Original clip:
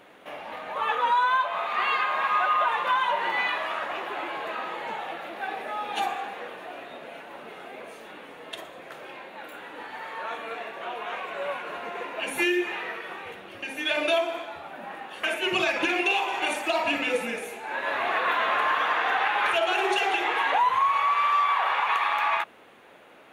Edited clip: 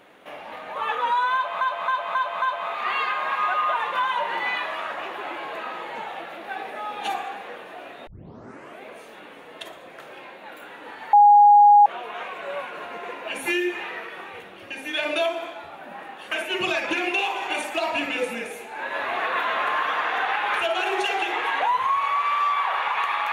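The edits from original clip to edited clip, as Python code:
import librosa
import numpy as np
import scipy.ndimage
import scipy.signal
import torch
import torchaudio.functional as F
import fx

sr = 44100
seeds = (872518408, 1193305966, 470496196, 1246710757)

y = fx.edit(x, sr, fx.repeat(start_s=1.34, length_s=0.27, count=5),
    fx.tape_start(start_s=6.99, length_s=0.74),
    fx.bleep(start_s=10.05, length_s=0.73, hz=824.0, db=-9.0), tone=tone)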